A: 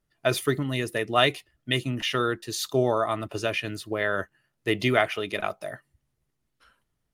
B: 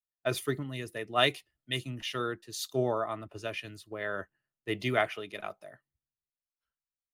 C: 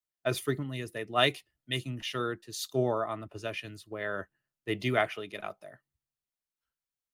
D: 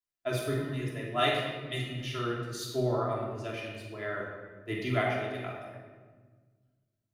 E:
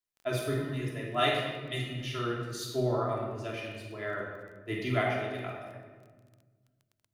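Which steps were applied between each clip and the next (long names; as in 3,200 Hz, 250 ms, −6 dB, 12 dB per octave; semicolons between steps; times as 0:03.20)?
multiband upward and downward expander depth 70%; level −8 dB
parametric band 160 Hz +2 dB 2.3 octaves
rectangular room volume 1,400 cubic metres, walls mixed, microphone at 3 metres; level −6.5 dB
surface crackle 14 per second −46 dBFS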